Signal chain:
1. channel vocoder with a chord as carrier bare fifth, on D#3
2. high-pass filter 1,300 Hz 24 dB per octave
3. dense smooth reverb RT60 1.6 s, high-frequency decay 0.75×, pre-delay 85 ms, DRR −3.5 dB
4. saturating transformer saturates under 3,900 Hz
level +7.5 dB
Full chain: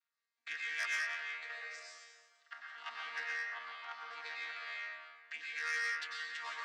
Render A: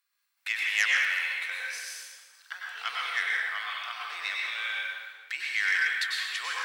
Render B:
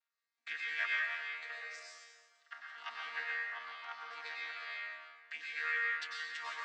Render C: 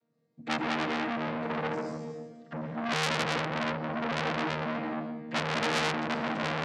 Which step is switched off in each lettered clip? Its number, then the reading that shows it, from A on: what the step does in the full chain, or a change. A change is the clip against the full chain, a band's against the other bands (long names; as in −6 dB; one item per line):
1, 500 Hz band −7.5 dB
4, 8 kHz band −7.5 dB
2, 500 Hz band +16.5 dB